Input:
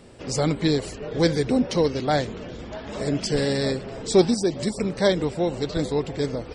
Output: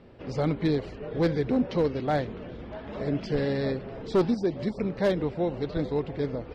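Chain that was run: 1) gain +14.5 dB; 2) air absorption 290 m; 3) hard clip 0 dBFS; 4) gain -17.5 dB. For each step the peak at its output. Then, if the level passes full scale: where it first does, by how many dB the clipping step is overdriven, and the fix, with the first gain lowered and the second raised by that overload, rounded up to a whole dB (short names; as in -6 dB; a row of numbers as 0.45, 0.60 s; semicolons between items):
+7.5, +7.0, 0.0, -17.5 dBFS; step 1, 7.0 dB; step 1 +7.5 dB, step 4 -10.5 dB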